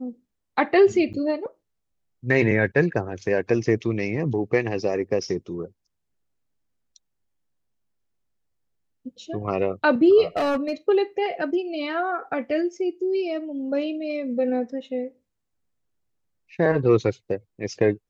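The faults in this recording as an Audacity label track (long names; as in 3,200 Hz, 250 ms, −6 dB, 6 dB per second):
1.130000	1.140000	drop-out 8.3 ms
10.370000	10.730000	clipping −19.5 dBFS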